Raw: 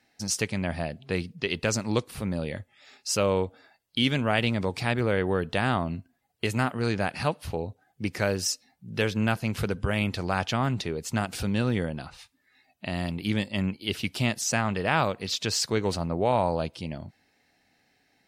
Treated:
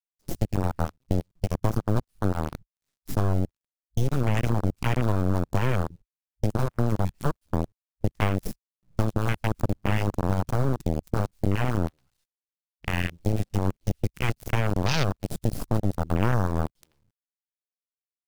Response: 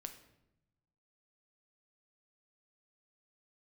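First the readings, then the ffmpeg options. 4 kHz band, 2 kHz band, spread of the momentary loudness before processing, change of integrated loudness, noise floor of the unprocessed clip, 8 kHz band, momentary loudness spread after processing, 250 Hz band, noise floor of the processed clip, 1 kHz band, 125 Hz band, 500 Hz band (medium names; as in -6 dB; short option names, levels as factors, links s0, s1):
-8.5 dB, -5.0 dB, 10 LU, 0.0 dB, -69 dBFS, -11.0 dB, 7 LU, 0.0 dB, under -85 dBFS, -2.0 dB, +5.0 dB, -3.0 dB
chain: -filter_complex "[0:a]adynamicequalizer=threshold=0.00447:dfrequency=6400:dqfactor=2:tfrequency=6400:tqfactor=2:attack=5:release=100:ratio=0.375:range=3:mode=cutabove:tftype=bell,acrossover=split=130|1500|3100[s0][s1][s2][s3];[s0]aeval=exprs='(mod(33.5*val(0)+1,2)-1)/33.5':c=same[s4];[s4][s1][s2][s3]amix=inputs=4:normalize=0,acrusher=bits=5:dc=4:mix=0:aa=0.000001,aeval=exprs='0.398*(cos(1*acos(clip(val(0)/0.398,-1,1)))-cos(1*PI/2))+0.1*(cos(3*acos(clip(val(0)/0.398,-1,1)))-cos(3*PI/2))+0.158*(cos(4*acos(clip(val(0)/0.398,-1,1)))-cos(4*PI/2))':c=same,bass=f=250:g=9,treble=f=4000:g=5,acompressor=threshold=0.112:ratio=5,afwtdn=0.0251,volume=1.26"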